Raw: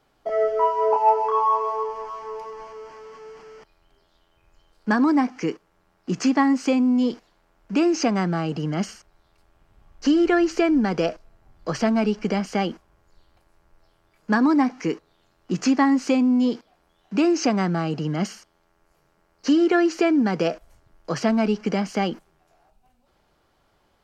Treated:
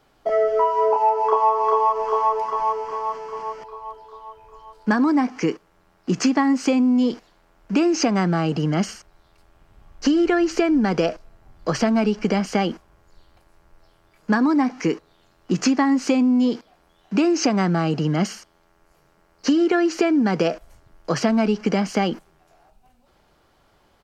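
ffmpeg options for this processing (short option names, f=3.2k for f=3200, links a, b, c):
-filter_complex "[0:a]asplit=2[a][b];[b]afade=t=in:st=0.92:d=0.01,afade=t=out:st=1.52:d=0.01,aecho=0:1:400|800|1200|1600|2000|2400|2800|3200|3600|4000:1|0.6|0.36|0.216|0.1296|0.07776|0.046656|0.0279936|0.0167962|0.0100777[c];[a][c]amix=inputs=2:normalize=0,acompressor=threshold=-20dB:ratio=6,volume=5dB"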